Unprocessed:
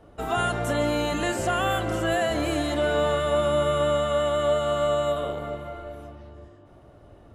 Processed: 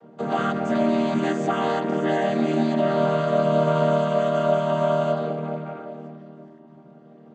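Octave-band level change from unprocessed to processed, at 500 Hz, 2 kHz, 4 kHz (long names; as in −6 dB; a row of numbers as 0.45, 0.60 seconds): +2.0, −2.0, −5.5 decibels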